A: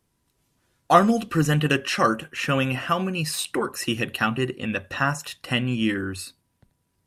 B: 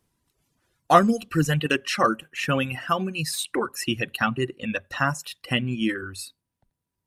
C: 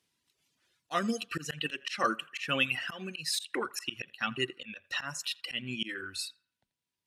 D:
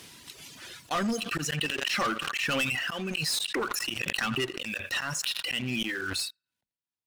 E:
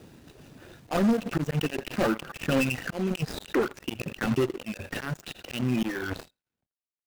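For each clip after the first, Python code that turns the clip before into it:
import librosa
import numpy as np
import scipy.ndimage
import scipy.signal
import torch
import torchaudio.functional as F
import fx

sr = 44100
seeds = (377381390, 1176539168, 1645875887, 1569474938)

y1 = fx.dereverb_blind(x, sr, rt60_s=1.8)
y2 = fx.weighting(y1, sr, curve='D')
y2 = fx.auto_swell(y2, sr, attack_ms=181.0)
y2 = fx.echo_banded(y2, sr, ms=83, feedback_pct=43, hz=1300.0, wet_db=-20.5)
y2 = F.gain(torch.from_numpy(y2), -8.0).numpy()
y3 = fx.leveller(y2, sr, passes=3)
y3 = 10.0 ** (-18.0 / 20.0) * np.tanh(y3 / 10.0 ** (-18.0 / 20.0))
y3 = fx.pre_swell(y3, sr, db_per_s=22.0)
y3 = F.gain(torch.from_numpy(y3), -5.0).numpy()
y4 = scipy.ndimage.median_filter(y3, 41, mode='constant')
y4 = F.gain(torch.from_numpy(y4), 7.0).numpy()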